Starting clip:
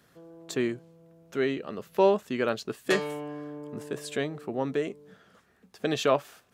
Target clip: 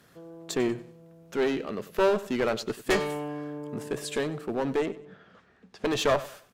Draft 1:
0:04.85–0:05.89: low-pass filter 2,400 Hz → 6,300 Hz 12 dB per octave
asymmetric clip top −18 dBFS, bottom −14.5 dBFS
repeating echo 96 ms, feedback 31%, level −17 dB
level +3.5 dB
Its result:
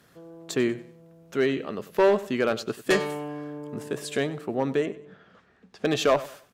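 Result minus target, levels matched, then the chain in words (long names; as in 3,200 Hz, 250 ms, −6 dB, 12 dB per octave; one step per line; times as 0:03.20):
asymmetric clip: distortion −8 dB
0:04.85–0:05.89: low-pass filter 2,400 Hz → 6,300 Hz 12 dB per octave
asymmetric clip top −29 dBFS, bottom −14.5 dBFS
repeating echo 96 ms, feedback 31%, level −17 dB
level +3.5 dB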